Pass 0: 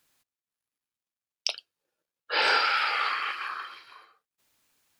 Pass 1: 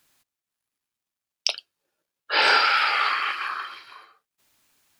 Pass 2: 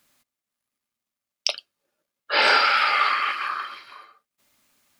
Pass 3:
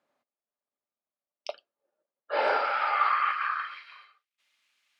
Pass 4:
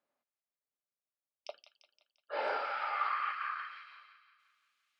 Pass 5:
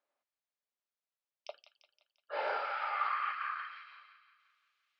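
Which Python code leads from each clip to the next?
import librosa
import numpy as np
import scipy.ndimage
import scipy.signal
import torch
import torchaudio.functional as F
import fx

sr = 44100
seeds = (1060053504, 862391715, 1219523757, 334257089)

y1 = fx.notch(x, sr, hz=490.0, q=12.0)
y1 = y1 * librosa.db_to_amplitude(5.0)
y2 = fx.small_body(y1, sr, hz=(230.0, 580.0, 1200.0, 2100.0), ring_ms=45, db=7)
y3 = fx.filter_sweep_bandpass(y2, sr, from_hz=600.0, to_hz=2700.0, start_s=2.64, end_s=4.04, q=1.5)
y4 = fx.echo_wet_highpass(y3, sr, ms=173, feedback_pct=54, hz=1700.0, wet_db=-8.5)
y4 = y4 * librosa.db_to_amplitude(-9.0)
y5 = fx.bandpass_edges(y4, sr, low_hz=390.0, high_hz=5200.0)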